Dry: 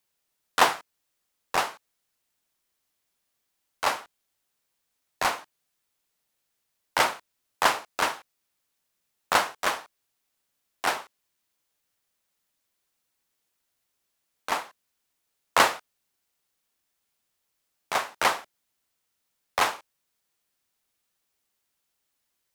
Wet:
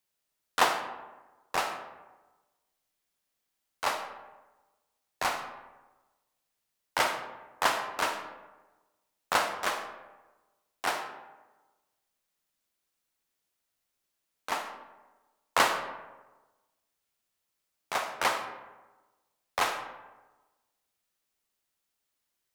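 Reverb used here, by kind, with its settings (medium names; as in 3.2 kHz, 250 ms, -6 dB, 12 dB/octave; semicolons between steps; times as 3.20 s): algorithmic reverb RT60 1.2 s, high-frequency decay 0.5×, pre-delay 15 ms, DRR 6.5 dB; trim -4.5 dB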